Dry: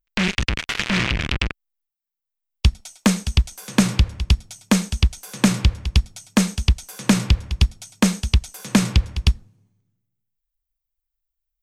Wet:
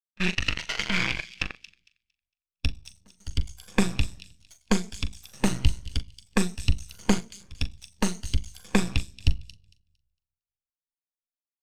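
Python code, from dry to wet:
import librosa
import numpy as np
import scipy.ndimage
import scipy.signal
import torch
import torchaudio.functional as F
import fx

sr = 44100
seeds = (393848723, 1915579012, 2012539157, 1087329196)

p1 = fx.spec_ripple(x, sr, per_octave=1.8, drift_hz=0.8, depth_db=8)
p2 = fx.step_gate(p1, sr, bpm=75, pattern='.xxxxx.xxxxxxxx', floor_db=-24.0, edge_ms=4.5)
p3 = fx.room_shoebox(p2, sr, seeds[0], volume_m3=2700.0, walls='furnished', distance_m=0.55)
p4 = np.maximum(p3, 0.0)
p5 = fx.low_shelf(p4, sr, hz=360.0, db=-9.0)
p6 = fx.doubler(p5, sr, ms=40.0, db=-11.5)
p7 = p6 + fx.echo_wet_highpass(p6, sr, ms=228, feedback_pct=34, hz=3300.0, wet_db=-7.0, dry=0)
p8 = fx.spectral_expand(p7, sr, expansion=1.5)
y = p8 * librosa.db_to_amplitude(-1.0)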